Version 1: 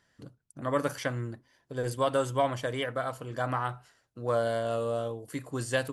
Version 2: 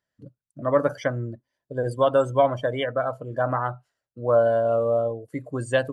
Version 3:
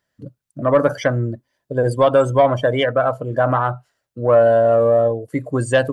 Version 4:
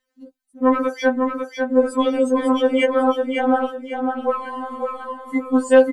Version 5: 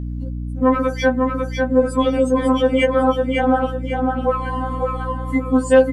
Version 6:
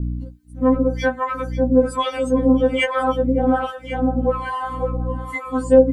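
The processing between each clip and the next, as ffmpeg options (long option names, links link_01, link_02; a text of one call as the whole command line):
ffmpeg -i in.wav -af "equalizer=frequency=600:width=3.9:gain=6.5,afftdn=noise_reduction=20:noise_floor=-37,volume=4.5dB" out.wav
ffmpeg -i in.wav -filter_complex "[0:a]asplit=2[link_01][link_02];[link_02]alimiter=limit=-17.5dB:level=0:latency=1,volume=-1dB[link_03];[link_01][link_03]amix=inputs=2:normalize=0,acontrast=30,volume=-1.5dB" out.wav
ffmpeg -i in.wav -filter_complex "[0:a]asplit=2[link_01][link_02];[link_02]aecho=0:1:549|1098|1647|2196:0.562|0.18|0.0576|0.0184[link_03];[link_01][link_03]amix=inputs=2:normalize=0,afftfilt=real='re*3.46*eq(mod(b,12),0)':imag='im*3.46*eq(mod(b,12),0)':win_size=2048:overlap=0.75,volume=1dB" out.wav
ffmpeg -i in.wav -filter_complex "[0:a]aeval=exprs='val(0)+0.0355*(sin(2*PI*60*n/s)+sin(2*PI*2*60*n/s)/2+sin(2*PI*3*60*n/s)/3+sin(2*PI*4*60*n/s)/4+sin(2*PI*5*60*n/s)/5)':channel_layout=same,asplit=2[link_01][link_02];[link_02]acompressor=threshold=-23dB:ratio=6,volume=0dB[link_03];[link_01][link_03]amix=inputs=2:normalize=0,volume=-1.5dB" out.wav
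ffmpeg -i in.wav -filter_complex "[0:a]acrossover=split=660[link_01][link_02];[link_01]aeval=exprs='val(0)*(1-1/2+1/2*cos(2*PI*1.2*n/s))':channel_layout=same[link_03];[link_02]aeval=exprs='val(0)*(1-1/2-1/2*cos(2*PI*1.2*n/s))':channel_layout=same[link_04];[link_03][link_04]amix=inputs=2:normalize=0,volume=3.5dB" out.wav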